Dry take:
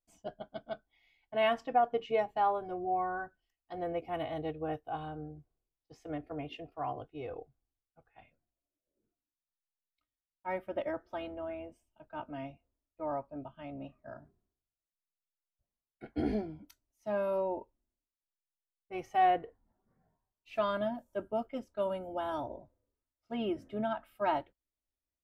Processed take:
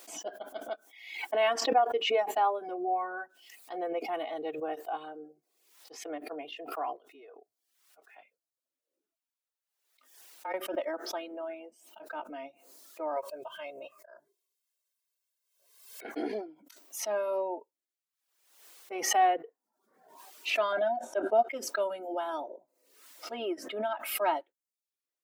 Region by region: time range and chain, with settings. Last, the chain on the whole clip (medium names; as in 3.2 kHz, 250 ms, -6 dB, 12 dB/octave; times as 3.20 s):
6.96–10.54 s: bass shelf 390 Hz -4.5 dB + compression 12:1, threshold -49 dBFS + frequency shift -33 Hz
13.16–16.05 s: treble shelf 2.7 kHz +9.5 dB + comb 1.9 ms, depth 76% + slow attack 314 ms
20.72–21.49 s: distance through air 79 m + doubling 13 ms -12 dB + small resonant body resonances 730/1500/3700 Hz, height 17 dB, ringing for 65 ms
whole clip: high-pass 330 Hz 24 dB/octave; reverb removal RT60 0.54 s; swell ahead of each attack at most 68 dB/s; trim +2.5 dB